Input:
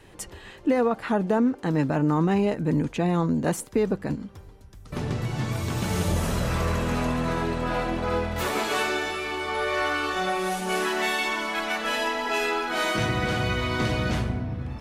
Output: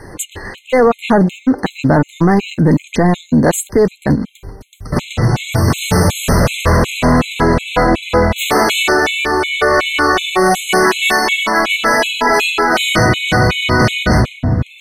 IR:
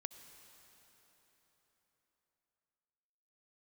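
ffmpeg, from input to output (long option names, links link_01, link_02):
-af "apsyclip=22dB,afftfilt=real='re*gt(sin(2*PI*2.7*pts/sr)*(1-2*mod(floor(b*sr/1024/2100),2)),0)':imag='im*gt(sin(2*PI*2.7*pts/sr)*(1-2*mod(floor(b*sr/1024/2100),2)),0)':win_size=1024:overlap=0.75,volume=-4.5dB"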